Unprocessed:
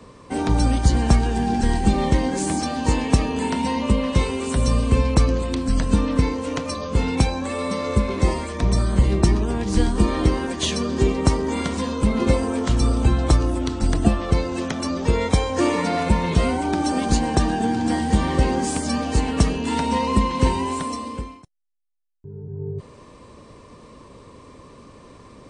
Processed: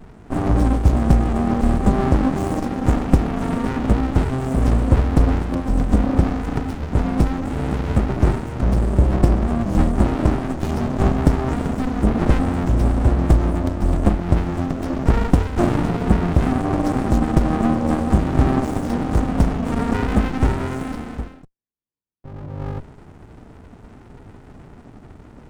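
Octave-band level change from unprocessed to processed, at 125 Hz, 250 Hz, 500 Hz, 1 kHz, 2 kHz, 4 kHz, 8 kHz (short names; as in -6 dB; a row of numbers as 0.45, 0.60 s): +3.0, +2.0, 0.0, -1.0, -1.5, -9.0, -10.0 dB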